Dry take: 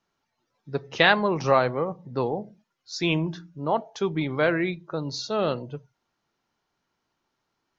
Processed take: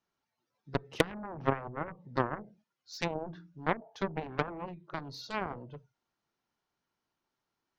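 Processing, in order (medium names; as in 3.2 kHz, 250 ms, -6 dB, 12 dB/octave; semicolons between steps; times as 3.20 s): low-pass that closes with the level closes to 360 Hz, closed at -19 dBFS; Chebyshev shaper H 4 -38 dB, 7 -14 dB, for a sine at -8.5 dBFS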